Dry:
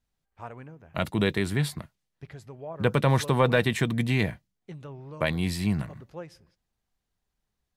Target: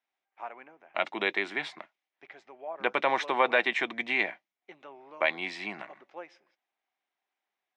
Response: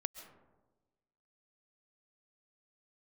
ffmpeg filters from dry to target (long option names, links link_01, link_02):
-af "highpass=frequency=360:width=0.5412,highpass=frequency=360:width=1.3066,equalizer=frequency=460:width_type=q:width=4:gain=-9,equalizer=frequency=770:width_type=q:width=4:gain=5,equalizer=frequency=2200:width_type=q:width=4:gain=7,equalizer=frequency=4500:width_type=q:width=4:gain=-9,lowpass=frequency=5000:width=0.5412,lowpass=frequency=5000:width=1.3066"